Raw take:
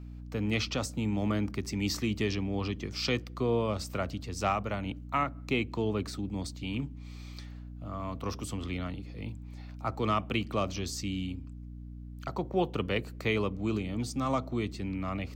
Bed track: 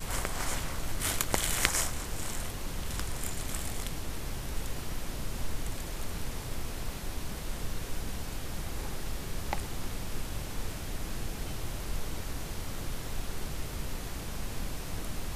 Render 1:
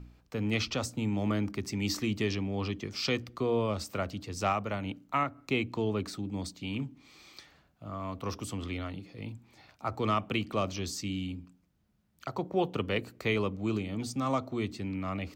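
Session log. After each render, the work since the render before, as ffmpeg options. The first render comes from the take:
-af "bandreject=f=60:t=h:w=4,bandreject=f=120:t=h:w=4,bandreject=f=180:t=h:w=4,bandreject=f=240:t=h:w=4,bandreject=f=300:t=h:w=4"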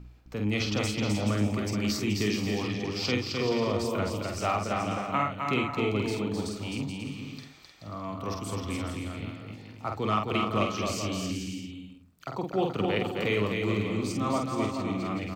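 -filter_complex "[0:a]asplit=2[a][b];[b]adelay=48,volume=-4.5dB[c];[a][c]amix=inputs=2:normalize=0,aecho=1:1:260|429|538.8|610.3|656.7:0.631|0.398|0.251|0.158|0.1"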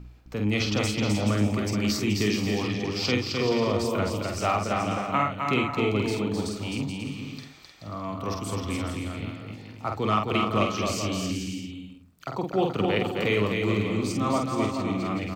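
-af "volume=3dB"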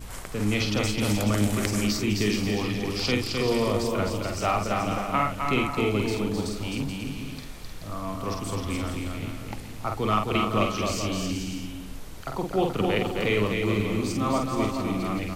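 -filter_complex "[1:a]volume=-5.5dB[a];[0:a][a]amix=inputs=2:normalize=0"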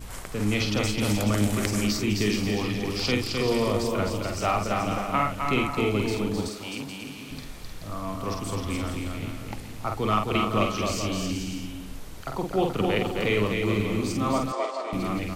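-filter_complex "[0:a]asettb=1/sr,asplit=3[a][b][c];[a]atrim=end=2.834[d];[b]atrim=start=2.83:end=3.29,asetpts=PTS-STARTPTS,afade=t=in:d=0.004:c=qsin,afade=t=out:st=0.456:d=0.004:c=qsin,aeval=exprs='val(0)*gte(abs(val(0)),0.00335)':c=same[e];[c]atrim=start=3.286[f];[d][e]acrossfade=d=0.004:c1=hsin:c2=qsin[g];[g][f]acrossfade=d=0.004:c1=qsin:c2=hsin,asettb=1/sr,asplit=3[h][i][j];[h]atrim=end=6.484[k];[i]atrim=start=6.48:end=7.31,asetpts=PTS-STARTPTS,afade=t=in:d=0.004:c=qsin,afade=t=out:st=0.826:d=0.004:c=qsin,highpass=f=400:p=1[l];[j]atrim=start=7.306[m];[k][l]acrossfade=d=0.004:c1=hsin:c2=qsin[n];[n][m]acrossfade=d=0.004:c1=qsin:c2=hsin,asettb=1/sr,asplit=3[o][p][q];[o]atrim=end=14.524[r];[p]atrim=start=14.52:end=14.93,asetpts=PTS-STARTPTS,afade=t=in:d=0.004:c=qsin,afade=t=out:st=0.406:d=0.004:c=qsin,highpass=f=460:w=0.5412,highpass=f=460:w=1.3066,equalizer=f=630:t=q:w=4:g=6,equalizer=f=2.6k:t=q:w=4:g=-6,equalizer=f=3.8k:t=q:w=4:g=-3,equalizer=f=6.2k:t=q:w=4:g=-6,lowpass=f=7.5k:w=0.5412,lowpass=f=7.5k:w=1.3066[s];[q]atrim=start=14.926[t];[r][s]acrossfade=d=0.004:c1=hsin:c2=qsin[u];[u][t]acrossfade=d=0.004:c1=qsin:c2=hsin"

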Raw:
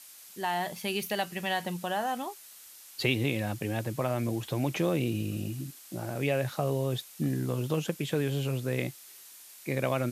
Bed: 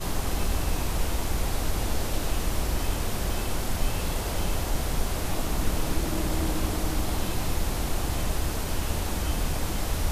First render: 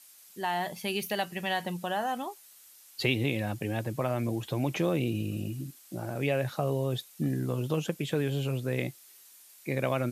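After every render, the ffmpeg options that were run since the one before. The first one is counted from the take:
-af "afftdn=nr=6:nf=-51"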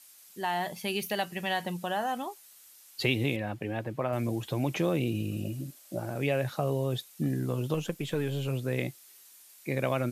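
-filter_complex "[0:a]asettb=1/sr,asplit=3[a][b][c];[a]atrim=end=3.364[d];[b]atrim=start=3.36:end=4.13,asetpts=PTS-STARTPTS,afade=t=in:d=0.004:c=qsin,afade=t=out:st=0.766:d=0.004:c=qsin,bass=f=250:g=-4,treble=f=4k:g=-13[e];[c]atrim=start=4.126[f];[d][e]acrossfade=d=0.004:c1=hsin:c2=qsin[g];[g][f]acrossfade=d=0.004:c1=qsin:c2=hsin,asettb=1/sr,asplit=3[h][i][j];[h]atrim=end=5.444[k];[i]atrim=start=5.44:end=5.99,asetpts=PTS-STARTPTS,afade=t=in:d=0.004:c=qsin,afade=t=out:st=0.546:d=0.004:c=qsin,equalizer=f=590:t=o:w=0.45:g=12[l];[j]atrim=start=5.986[m];[k][l]acrossfade=d=0.004:c1=hsin:c2=qsin[n];[n][m]acrossfade=d=0.004:c1=qsin:c2=hsin,asettb=1/sr,asplit=3[o][p][q];[o]atrim=end=7.744[r];[p]atrim=start=7.74:end=8.48,asetpts=PTS-STARTPTS,afade=t=in:d=0.004:c=qsin,afade=t=out:st=0.736:d=0.004:c=qsin,aeval=exprs='if(lt(val(0),0),0.708*val(0),val(0))':c=same[s];[q]atrim=start=8.476[t];[r][s]acrossfade=d=0.004:c1=hsin:c2=qsin[u];[u][t]acrossfade=d=0.004:c1=qsin:c2=hsin"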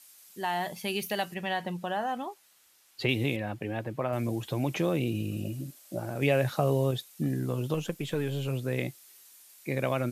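-filter_complex "[0:a]asettb=1/sr,asplit=3[a][b][c];[a]atrim=end=1.344[d];[b]atrim=start=1.34:end=3.09,asetpts=PTS-STARTPTS,afade=t=in:d=0.004:c=qsin,afade=t=out:st=1.746:d=0.004:c=qsin,highshelf=f=5.1k:g=-11[e];[c]atrim=start=3.086[f];[d][e]acrossfade=d=0.004:c1=hsin:c2=qsin[g];[g][f]acrossfade=d=0.004:c1=qsin:c2=hsin,asplit=3[h][i][j];[h]atrim=end=6.222[k];[i]atrim=start=6.218:end=6.912,asetpts=PTS-STARTPTS,volume=3.5dB[l];[j]atrim=start=6.908[m];[k][l]acrossfade=d=0.004:c1=hsin:c2=hsin[n];[n][m]acrossfade=d=0.004:c1=hsin:c2=hsin"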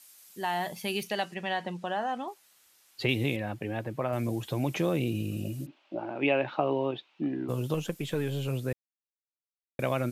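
-filter_complex "[0:a]asettb=1/sr,asplit=3[a][b][c];[a]atrim=end=1.034[d];[b]atrim=start=1.03:end=2.28,asetpts=PTS-STARTPTS,afade=t=in:d=0.004:c=qsin,afade=t=out:st=1.246:d=0.004:c=qsin,highpass=170,lowpass=7.6k[e];[c]atrim=start=2.276[f];[d][e]acrossfade=d=0.004:c1=hsin:c2=qsin[g];[g][f]acrossfade=d=0.004:c1=qsin:c2=hsin,asplit=3[h][i][j];[h]afade=t=out:st=5.65:d=0.02[k];[i]highpass=280,equalizer=f=310:t=q:w=4:g=8,equalizer=f=480:t=q:w=4:g=-4,equalizer=f=900:t=q:w=4:g=7,equalizer=f=1.8k:t=q:w=4:g=-4,equalizer=f=2.7k:t=q:w=4:g=5,lowpass=f=3.2k:w=0.5412,lowpass=f=3.2k:w=1.3066,afade=t=in:st=5.65:d=0.02,afade=t=out:st=7.48:d=0.02[l];[j]afade=t=in:st=7.48:d=0.02[m];[k][l][m]amix=inputs=3:normalize=0,asplit=3[n][o][p];[n]atrim=end=8.73,asetpts=PTS-STARTPTS,afade=t=out:st=8.726:d=0.004:c=hsin[q];[o]atrim=start=8.73:end=9.79,asetpts=PTS-STARTPTS,volume=0[r];[p]atrim=start=9.79,asetpts=PTS-STARTPTS,afade=t=in:d=0.004:c=hsin[s];[q][r][s]concat=n=3:v=0:a=1"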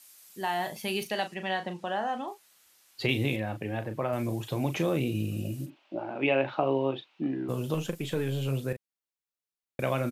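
-filter_complex "[0:a]asplit=2[a][b];[b]adelay=37,volume=-9.5dB[c];[a][c]amix=inputs=2:normalize=0"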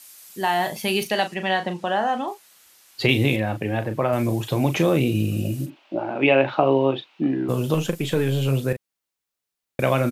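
-af "volume=8.5dB"

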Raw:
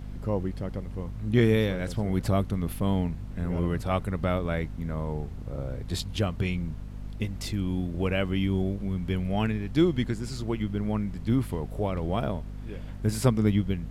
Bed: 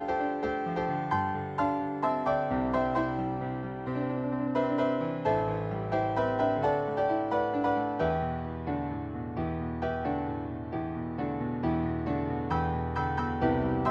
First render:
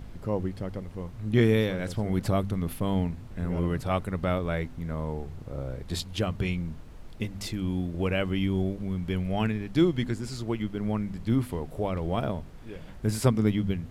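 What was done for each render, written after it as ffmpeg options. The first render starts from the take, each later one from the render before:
-af "bandreject=f=50:t=h:w=4,bandreject=f=100:t=h:w=4,bandreject=f=150:t=h:w=4,bandreject=f=200:t=h:w=4,bandreject=f=250:t=h:w=4"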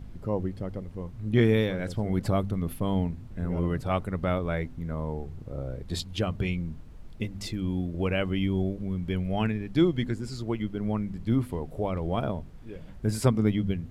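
-af "afftdn=nr=6:nf=-44"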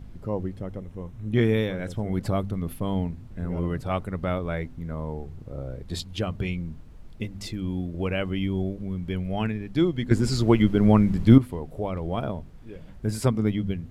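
-filter_complex "[0:a]asettb=1/sr,asplit=3[a][b][c];[a]atrim=end=0.554[d];[b]atrim=start=0.55:end=2.12,asetpts=PTS-STARTPTS,afade=t=in:d=0.004:c=qsin,afade=t=out:st=1.566:d=0.004:c=qsin,bandreject=f=4.6k:w=5.7[e];[c]atrim=start=2.116[f];[d][e]acrossfade=d=0.004:c1=hsin:c2=qsin[g];[g][f]acrossfade=d=0.004:c1=qsin:c2=hsin,asplit=3[h][i][j];[h]atrim=end=10.112[k];[i]atrim=start=10.108:end=11.382,asetpts=PTS-STARTPTS,volume=11.5dB[l];[j]atrim=start=11.378[m];[k][l]acrossfade=d=0.004:c1=hsin:c2=hsin[n];[n][m]acrossfade=d=0.004:c1=hsin:c2=hsin"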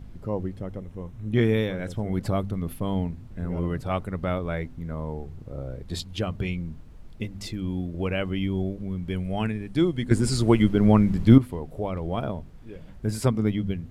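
-filter_complex "[0:a]asettb=1/sr,asplit=3[a][b][c];[a]atrim=end=9.094[d];[b]atrim=start=9.09:end=10.69,asetpts=PTS-STARTPTS,afade=t=in:d=0.004:c=qsin,afade=t=out:st=1.596:d=0.004:c=qsin,equalizer=f=9k:t=o:w=0.34:g=10.5[e];[c]atrim=start=10.686[f];[d][e]acrossfade=d=0.004:c1=hsin:c2=qsin[g];[g][f]acrossfade=d=0.004:c1=qsin:c2=hsin"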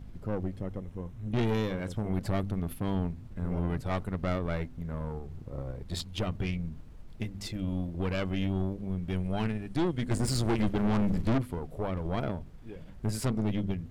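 -af "aeval=exprs='(tanh(15.8*val(0)+0.55)-tanh(0.55))/15.8':c=same"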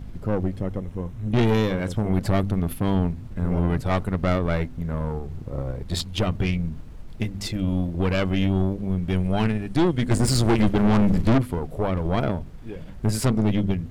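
-af "volume=8.5dB"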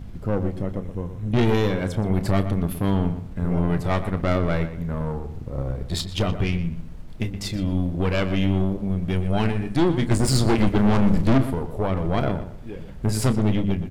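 -filter_complex "[0:a]asplit=2[a][b];[b]adelay=30,volume=-12dB[c];[a][c]amix=inputs=2:normalize=0,asplit=2[d][e];[e]adelay=121,lowpass=f=3.2k:p=1,volume=-11dB,asplit=2[f][g];[g]adelay=121,lowpass=f=3.2k:p=1,volume=0.27,asplit=2[h][i];[i]adelay=121,lowpass=f=3.2k:p=1,volume=0.27[j];[d][f][h][j]amix=inputs=4:normalize=0"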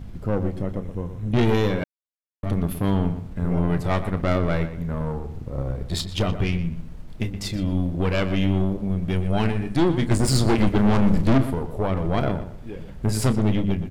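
-filter_complex "[0:a]asplit=3[a][b][c];[a]atrim=end=1.84,asetpts=PTS-STARTPTS,afade=t=out:st=1.836:d=0.004:c=hsin[d];[b]atrim=start=1.84:end=2.43,asetpts=PTS-STARTPTS,volume=0[e];[c]atrim=start=2.43,asetpts=PTS-STARTPTS,afade=t=in:d=0.004:c=hsin[f];[d][e][f]concat=n=3:v=0:a=1"

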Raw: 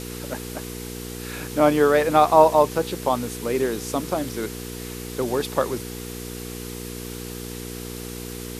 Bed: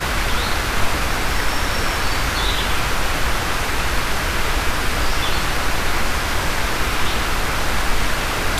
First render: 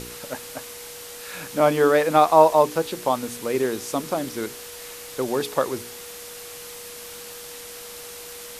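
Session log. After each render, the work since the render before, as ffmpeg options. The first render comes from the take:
-af "bandreject=f=60:t=h:w=4,bandreject=f=120:t=h:w=4,bandreject=f=180:t=h:w=4,bandreject=f=240:t=h:w=4,bandreject=f=300:t=h:w=4,bandreject=f=360:t=h:w=4,bandreject=f=420:t=h:w=4"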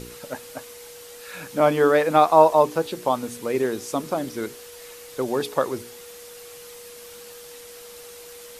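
-af "afftdn=nr=6:nf=-39"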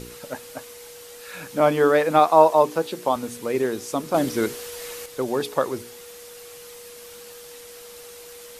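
-filter_complex "[0:a]asettb=1/sr,asplit=3[a][b][c];[a]atrim=end=2.194[d];[b]atrim=start=2.19:end=3.16,asetpts=PTS-STARTPTS,afade=t=in:d=0.004:c=qsin,afade=t=out:st=0.966:d=0.004:c=qsin,highpass=140[e];[c]atrim=start=3.156[f];[d][e]acrossfade=d=0.004:c1=hsin:c2=qsin[g];[g][f]acrossfade=d=0.004:c1=qsin:c2=hsin,asettb=1/sr,asplit=3[h][i][j];[h]atrim=end=4.144[k];[i]atrim=start=4.14:end=5.06,asetpts=PTS-STARTPTS,afade=t=in:d=0.004:c=qsin,afade=t=out:st=0.916:d=0.004:c=qsin,acontrast=65[l];[j]atrim=start=5.056[m];[k][l]acrossfade=d=0.004:c1=hsin:c2=qsin[n];[n][m]acrossfade=d=0.004:c1=qsin:c2=hsin"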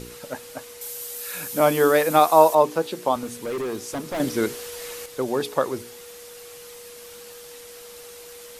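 -filter_complex "[0:a]asettb=1/sr,asplit=3[a][b][c];[a]atrim=end=0.814[d];[b]atrim=start=0.81:end=2.55,asetpts=PTS-STARTPTS,afade=t=in:d=0.004:c=qsin,afade=t=out:st=1.736:d=0.004:c=qsin,aemphasis=mode=production:type=50fm[e];[c]atrim=start=2.546[f];[d][e]acrossfade=d=0.004:c1=hsin:c2=qsin[g];[g][f]acrossfade=d=0.004:c1=qsin:c2=hsin,asettb=1/sr,asplit=3[h][i][j];[h]atrim=end=3.234[k];[i]atrim=start=3.23:end=4.2,asetpts=PTS-STARTPTS,afade=t=in:d=0.004:c=qsin,afade=t=out:st=0.966:d=0.004:c=qsin,volume=25dB,asoftclip=hard,volume=-25dB[l];[j]atrim=start=4.196[m];[k][l]acrossfade=d=0.004:c1=hsin:c2=qsin[n];[n][m]acrossfade=d=0.004:c1=qsin:c2=hsin"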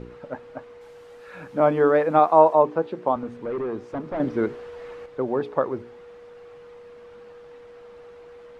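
-af "lowpass=1.4k"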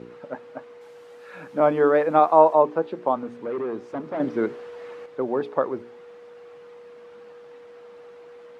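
-af "highpass=170"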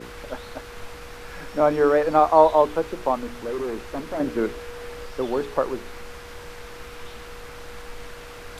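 -filter_complex "[1:a]volume=-20.5dB[a];[0:a][a]amix=inputs=2:normalize=0"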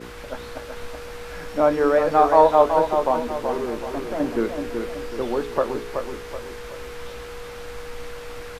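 -filter_complex "[0:a]asplit=2[a][b];[b]adelay=17,volume=-11dB[c];[a][c]amix=inputs=2:normalize=0,aecho=1:1:377|754|1131|1508|1885:0.501|0.205|0.0842|0.0345|0.0142"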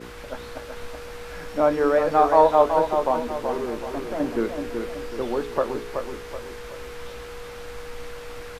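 -af "volume=-1.5dB"

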